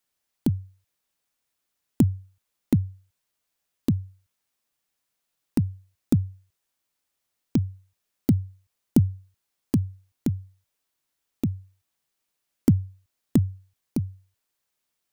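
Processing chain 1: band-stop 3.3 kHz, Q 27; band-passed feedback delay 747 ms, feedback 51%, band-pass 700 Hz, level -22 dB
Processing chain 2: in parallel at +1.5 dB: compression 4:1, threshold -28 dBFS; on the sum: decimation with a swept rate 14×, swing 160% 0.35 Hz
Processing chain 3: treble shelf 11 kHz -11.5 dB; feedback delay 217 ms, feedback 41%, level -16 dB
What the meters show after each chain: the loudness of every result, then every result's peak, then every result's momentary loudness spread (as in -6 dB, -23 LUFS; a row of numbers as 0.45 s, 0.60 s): -27.5 LUFS, -24.5 LUFS, -27.5 LUFS; -6.5 dBFS, -2.0 dBFS, -7.0 dBFS; 14 LU, 14 LU, 19 LU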